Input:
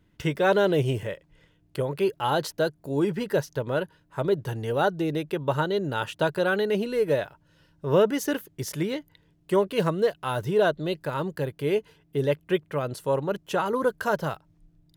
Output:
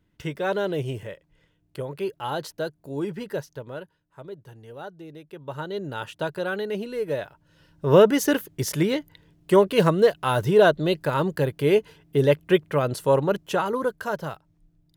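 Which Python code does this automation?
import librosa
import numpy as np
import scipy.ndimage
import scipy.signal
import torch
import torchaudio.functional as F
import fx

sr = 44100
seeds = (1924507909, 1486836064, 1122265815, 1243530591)

y = fx.gain(x, sr, db=fx.line((3.27, -4.5), (4.27, -15.0), (5.21, -15.0), (5.8, -4.0), (7.1, -4.0), (7.86, 5.5), (13.24, 5.5), (14.02, -3.0)))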